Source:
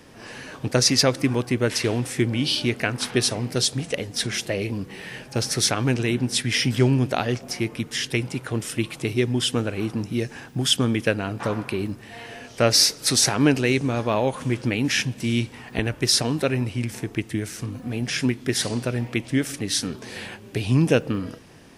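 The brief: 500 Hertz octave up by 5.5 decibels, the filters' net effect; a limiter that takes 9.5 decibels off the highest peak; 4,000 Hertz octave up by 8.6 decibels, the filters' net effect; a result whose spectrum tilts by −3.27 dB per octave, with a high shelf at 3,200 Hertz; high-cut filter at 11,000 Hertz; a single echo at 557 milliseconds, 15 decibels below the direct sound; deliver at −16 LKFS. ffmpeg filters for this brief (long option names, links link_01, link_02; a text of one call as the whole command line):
ffmpeg -i in.wav -af "lowpass=11000,equalizer=frequency=500:width_type=o:gain=6.5,highshelf=frequency=3200:gain=7.5,equalizer=frequency=4000:width_type=o:gain=5,alimiter=limit=-5.5dB:level=0:latency=1,aecho=1:1:557:0.178,volume=3.5dB" out.wav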